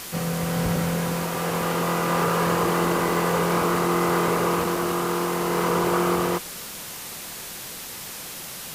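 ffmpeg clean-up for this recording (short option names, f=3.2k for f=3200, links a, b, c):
-af "adeclick=t=4,afwtdn=0.018"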